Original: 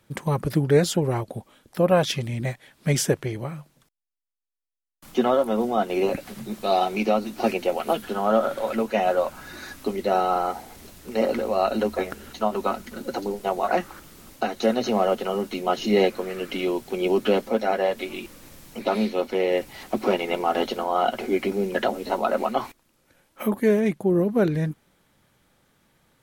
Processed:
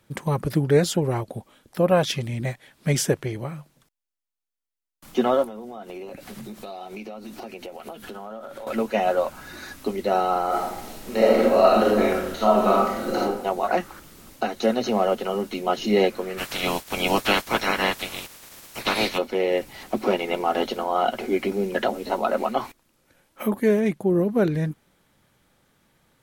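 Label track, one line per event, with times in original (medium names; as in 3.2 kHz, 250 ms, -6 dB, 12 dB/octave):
5.440000	8.670000	compression 12:1, threshold -33 dBFS
10.470000	13.210000	reverb throw, RT60 0.87 s, DRR -5.5 dB
16.370000	19.170000	spectral peaks clipped ceiling under each frame's peak by 25 dB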